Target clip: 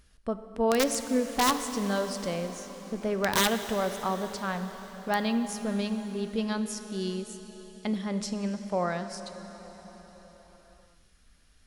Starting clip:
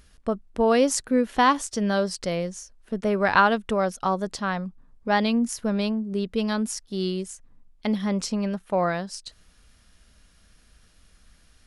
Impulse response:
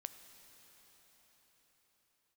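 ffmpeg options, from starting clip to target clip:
-filter_complex "[0:a]aeval=exprs='(mod(3.35*val(0)+1,2)-1)/3.35':channel_layout=same[link_01];[1:a]atrim=start_sample=2205,asetrate=48510,aresample=44100[link_02];[link_01][link_02]afir=irnorm=-1:irlink=0"

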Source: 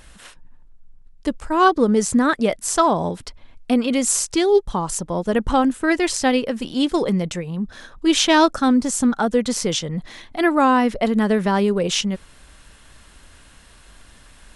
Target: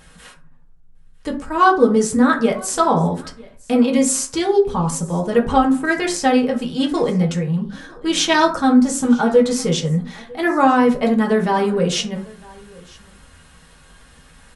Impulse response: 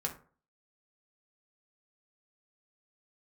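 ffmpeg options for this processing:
-filter_complex "[0:a]aecho=1:1:953:0.0631[link_01];[1:a]atrim=start_sample=2205[link_02];[link_01][link_02]afir=irnorm=-1:irlink=0,volume=-1dB"

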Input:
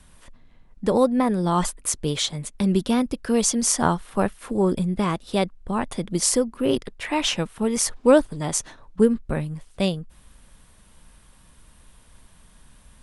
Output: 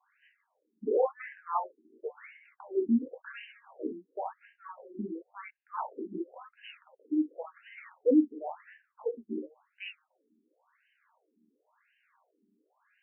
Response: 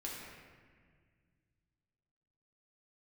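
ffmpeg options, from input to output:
-filter_complex "[0:a]asettb=1/sr,asplit=3[link_01][link_02][link_03];[link_01]atrim=end=3.524[link_04];[link_02]atrim=start=3.52:end=5.39,asetpts=PTS-STARTPTS,afade=type=in:duration=0.004:curve=qsin,afade=type=out:start_time=1.866:duration=0.004:curve=qsin,aeval=exprs='0.596*(cos(1*acos(clip(val(0)/0.596,-1,1)))-cos(1*PI/2))+0.0841*(cos(3*acos(clip(val(0)/0.596,-1,1)))-cos(3*PI/2))+0.0376*(cos(4*acos(clip(val(0)/0.596,-1,1)))-cos(4*PI/2))':channel_layout=same[link_05];[link_03]atrim=start=5.386[link_06];[link_04][link_05]acrossfade=duration=0.004:curve1=hsin:curve2=qsin[link_07];[link_07][link_06]acrossfade=duration=0.004:curve1=qsin:curve2=hsin[link_08];[1:a]atrim=start_sample=2205,atrim=end_sample=3087[link_09];[link_08][link_09]afir=irnorm=-1:irlink=0,afftfilt=real='re*between(b*sr/1024,280*pow(2200/280,0.5+0.5*sin(2*PI*0.94*pts/sr))/1.41,280*pow(2200/280,0.5+0.5*sin(2*PI*0.94*pts/sr))*1.41)':imag='im*between(b*sr/1024,280*pow(2200/280,0.5+0.5*sin(2*PI*0.94*pts/sr))/1.41,280*pow(2200/280,0.5+0.5*sin(2*PI*0.94*pts/sr))*1.41)':win_size=1024:overlap=0.75,volume=-2.5dB"

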